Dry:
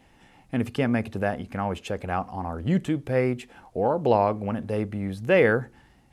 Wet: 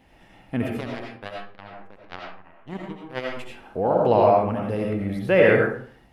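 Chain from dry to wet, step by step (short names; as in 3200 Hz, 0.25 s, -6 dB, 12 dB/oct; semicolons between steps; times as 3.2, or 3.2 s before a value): bell 7400 Hz -7 dB 0.92 oct; 0.74–3.37 power-law curve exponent 3; digital reverb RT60 0.5 s, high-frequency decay 0.65×, pre-delay 45 ms, DRR -1.5 dB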